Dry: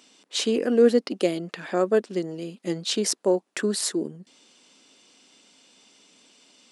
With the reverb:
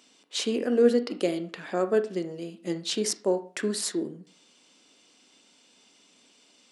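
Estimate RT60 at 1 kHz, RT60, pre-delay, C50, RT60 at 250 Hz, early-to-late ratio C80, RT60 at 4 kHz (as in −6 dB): 0.40 s, 0.45 s, 21 ms, 14.0 dB, 0.40 s, 18.5 dB, 0.35 s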